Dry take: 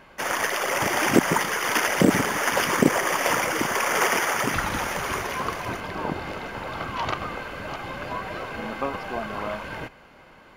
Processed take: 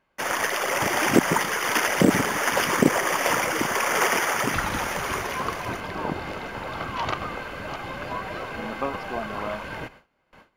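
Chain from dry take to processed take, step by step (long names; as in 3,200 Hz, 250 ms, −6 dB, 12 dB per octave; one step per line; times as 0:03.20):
noise gate with hold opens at −39 dBFS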